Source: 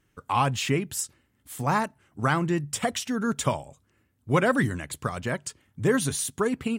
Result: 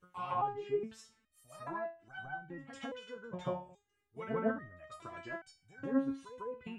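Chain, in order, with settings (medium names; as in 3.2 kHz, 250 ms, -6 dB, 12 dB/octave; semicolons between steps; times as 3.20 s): reverse echo 152 ms -10 dB; low-pass that closes with the level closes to 1 kHz, closed at -22 dBFS; resonator arpeggio 2.4 Hz 180–760 Hz; trim +3.5 dB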